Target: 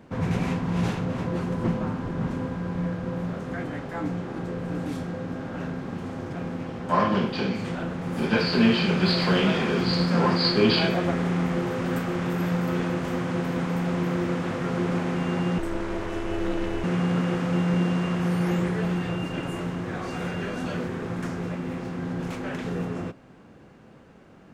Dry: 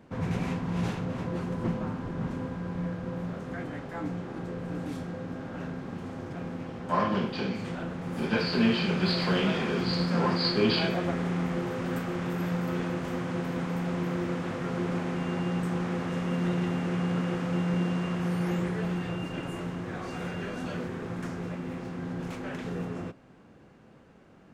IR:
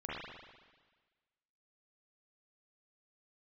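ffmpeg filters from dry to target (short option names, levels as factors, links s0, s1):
-filter_complex "[0:a]asettb=1/sr,asplit=3[s0][s1][s2];[s0]atrim=end=15.584[s3];[s1]atrim=start=15.58:end=16.84,asetpts=PTS-STARTPTS,afade=t=in:d=0.004:c=qsin,afade=t=out:st=1.256:d=0.004:c=qsin,aeval=exprs='val(0)*sin(2*PI*160*n/s)':c=same[s4];[s2]atrim=start=16.836[s5];[s3][s4]acrossfade=d=0.004:c1=hsin:c2=qsin[s6];[s6][s5]acrossfade=d=0.004:c1=qsin:c2=hsin,volume=1.68"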